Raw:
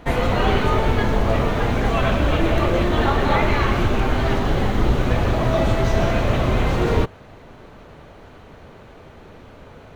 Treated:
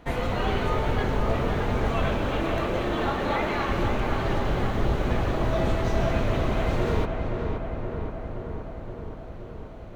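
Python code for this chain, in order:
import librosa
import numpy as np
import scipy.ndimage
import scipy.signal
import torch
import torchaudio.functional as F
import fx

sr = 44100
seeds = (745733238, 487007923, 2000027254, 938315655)

p1 = fx.highpass(x, sr, hz=220.0, slope=12, at=(2.19, 3.69))
p2 = p1 + fx.echo_filtered(p1, sr, ms=523, feedback_pct=74, hz=2200.0, wet_db=-5.0, dry=0)
y = p2 * 10.0 ** (-7.5 / 20.0)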